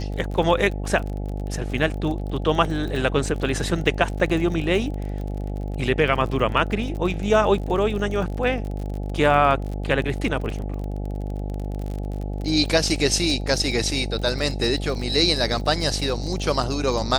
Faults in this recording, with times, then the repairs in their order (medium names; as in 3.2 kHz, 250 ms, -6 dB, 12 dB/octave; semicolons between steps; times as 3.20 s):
buzz 50 Hz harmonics 17 -28 dBFS
crackle 32 per s -29 dBFS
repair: de-click; de-hum 50 Hz, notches 17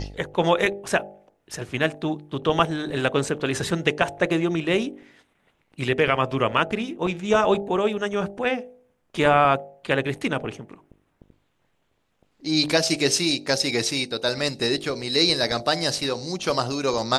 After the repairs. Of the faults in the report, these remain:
nothing left